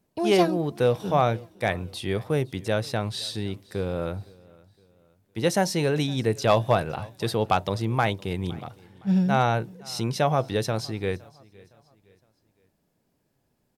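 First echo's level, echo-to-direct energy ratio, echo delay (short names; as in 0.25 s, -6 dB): -24.0 dB, -23.5 dB, 0.513 s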